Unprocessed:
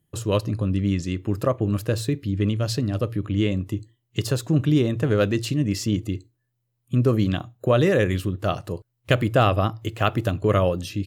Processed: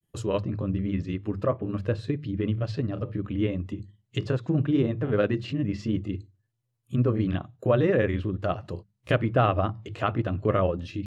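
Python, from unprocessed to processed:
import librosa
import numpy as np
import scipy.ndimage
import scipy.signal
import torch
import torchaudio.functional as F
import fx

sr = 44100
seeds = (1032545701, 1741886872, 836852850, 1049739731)

y = fx.env_lowpass_down(x, sr, base_hz=2300.0, full_db=-20.5)
y = fx.hum_notches(y, sr, base_hz=50, count=4)
y = fx.granulator(y, sr, seeds[0], grain_ms=100.0, per_s=20.0, spray_ms=16.0, spread_st=0)
y = y * 10.0 ** (-2.0 / 20.0)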